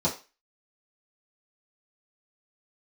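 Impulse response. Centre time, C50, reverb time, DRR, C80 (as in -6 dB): 18 ms, 11.5 dB, 0.30 s, -9.0 dB, 17.0 dB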